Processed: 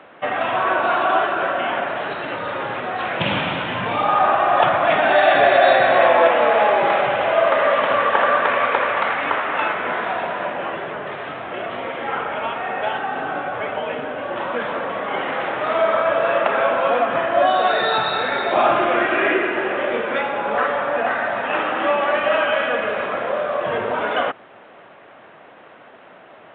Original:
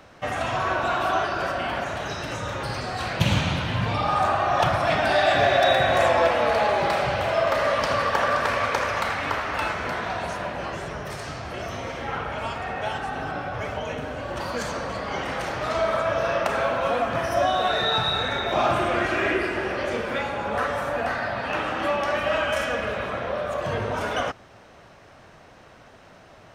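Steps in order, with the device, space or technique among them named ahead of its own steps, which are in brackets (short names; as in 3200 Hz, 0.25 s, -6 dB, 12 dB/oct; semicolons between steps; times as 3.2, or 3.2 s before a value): telephone (BPF 270–3300 Hz; gain +6 dB; µ-law 64 kbps 8000 Hz)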